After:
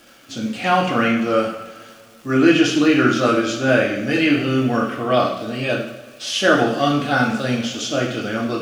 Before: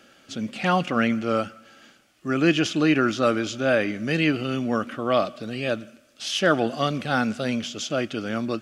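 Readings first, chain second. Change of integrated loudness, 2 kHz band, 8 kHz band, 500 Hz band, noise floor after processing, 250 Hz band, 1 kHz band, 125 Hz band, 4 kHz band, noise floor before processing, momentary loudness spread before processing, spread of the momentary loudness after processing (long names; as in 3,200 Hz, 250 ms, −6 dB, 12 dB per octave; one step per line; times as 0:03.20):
+5.5 dB, +6.0 dB, +5.5 dB, +5.0 dB, −46 dBFS, +6.0 dB, +6.0 dB, +4.5 dB, +5.5 dB, −57 dBFS, 9 LU, 11 LU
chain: surface crackle 240 per second −40 dBFS
coupled-rooms reverb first 0.63 s, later 2.4 s, from −17 dB, DRR −2.5 dB
level +1 dB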